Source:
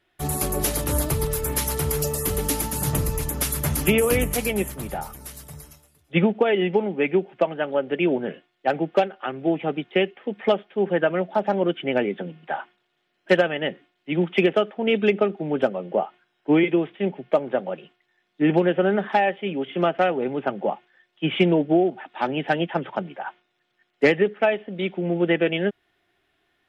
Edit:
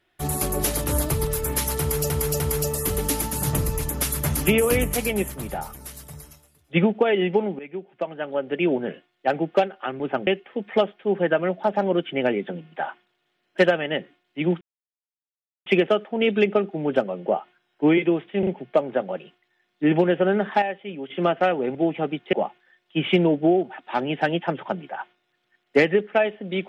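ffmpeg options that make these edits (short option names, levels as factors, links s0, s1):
-filter_complex "[0:a]asplit=13[s0][s1][s2][s3][s4][s5][s6][s7][s8][s9][s10][s11][s12];[s0]atrim=end=2.102[s13];[s1]atrim=start=1.798:end=2.102[s14];[s2]atrim=start=1.798:end=6.99,asetpts=PTS-STARTPTS,afade=t=out:st=5.188:d=0.004:c=hsin:silence=0.112202[s15];[s3]atrim=start=6.99:end=9.402,asetpts=PTS-STARTPTS,afade=t=in:d=1.12:silence=0.112202[s16];[s4]atrim=start=20.328:end=20.602[s17];[s5]atrim=start=9.978:end=14.32,asetpts=PTS-STARTPTS,afade=t=out:st=4.338:d=0.004:c=hsin,apad=pad_dur=1.05[s18];[s6]atrim=start=14.32:end=17.092,asetpts=PTS-STARTPTS,afade=t=in:d=0.004:c=hsin[s19];[s7]atrim=start=17.048:end=17.092[s20];[s8]atrim=start=17.048:end=19.202[s21];[s9]atrim=start=19.198:end=19.682,asetpts=PTS-STARTPTS,volume=0.473[s22];[s10]atrim=start=19.678:end=20.332[s23];[s11]atrim=start=9.398:end=9.982[s24];[s12]atrim=start=20.598[s25];[s13][s14]acrossfade=d=0.004:c1=hsin:c2=hsin[s26];[s15][s16]concat=n=2:v=0:a=1[s27];[s26][s27]acrossfade=d=0.004:c1=hsin:c2=hsin[s28];[s28][s17]acrossfade=d=0.004:c1=hsin:c2=hsin[s29];[s18][s19]concat=n=2:v=0:a=1[s30];[s29][s30]acrossfade=d=0.004:c1=hsin:c2=hsin[s31];[s31][s20]acrossfade=d=0.004:c1=hsin:c2=hsin[s32];[s32][s21]acrossfade=d=0.004:c1=hsin:c2=hsin[s33];[s33][s22]acrossfade=d=0.004:c1=hsin:c2=hsin[s34];[s34][s23]acrossfade=d=0.004:c1=hsin:c2=hsin[s35];[s35][s24]acrossfade=d=0.004:c1=hsin:c2=hsin[s36];[s36][s25]acrossfade=d=0.004:c1=hsin:c2=hsin"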